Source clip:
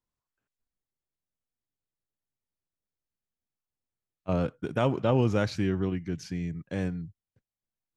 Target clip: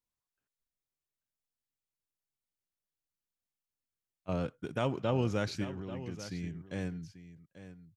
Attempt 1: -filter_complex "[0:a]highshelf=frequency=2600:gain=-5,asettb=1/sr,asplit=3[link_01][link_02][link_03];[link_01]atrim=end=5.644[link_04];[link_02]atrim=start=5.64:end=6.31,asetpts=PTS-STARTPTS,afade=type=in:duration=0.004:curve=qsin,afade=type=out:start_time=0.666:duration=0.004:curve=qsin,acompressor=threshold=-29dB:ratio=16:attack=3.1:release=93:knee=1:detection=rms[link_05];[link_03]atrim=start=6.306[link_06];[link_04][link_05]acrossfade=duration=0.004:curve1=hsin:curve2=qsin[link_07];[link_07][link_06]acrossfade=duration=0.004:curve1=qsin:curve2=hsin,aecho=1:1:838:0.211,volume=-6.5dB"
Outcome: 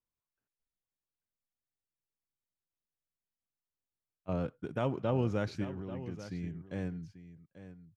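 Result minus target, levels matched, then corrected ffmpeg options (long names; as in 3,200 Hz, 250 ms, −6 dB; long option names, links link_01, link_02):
4,000 Hz band −6.5 dB
-filter_complex "[0:a]highshelf=frequency=2600:gain=5.5,asettb=1/sr,asplit=3[link_01][link_02][link_03];[link_01]atrim=end=5.644[link_04];[link_02]atrim=start=5.64:end=6.31,asetpts=PTS-STARTPTS,afade=type=in:duration=0.004:curve=qsin,afade=type=out:start_time=0.666:duration=0.004:curve=qsin,acompressor=threshold=-29dB:ratio=16:attack=3.1:release=93:knee=1:detection=rms[link_05];[link_03]atrim=start=6.306[link_06];[link_04][link_05]acrossfade=duration=0.004:curve1=hsin:curve2=qsin[link_07];[link_07][link_06]acrossfade=duration=0.004:curve1=qsin:curve2=hsin,aecho=1:1:838:0.211,volume=-6.5dB"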